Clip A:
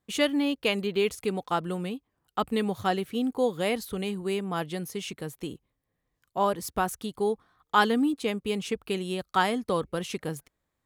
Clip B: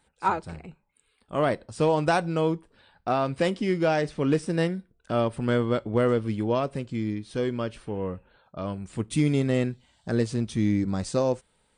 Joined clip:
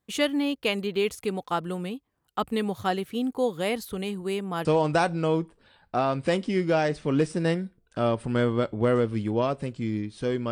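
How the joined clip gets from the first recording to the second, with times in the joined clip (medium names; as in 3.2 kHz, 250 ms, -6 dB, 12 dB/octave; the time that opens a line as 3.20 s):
clip A
4.65 s: go over to clip B from 1.78 s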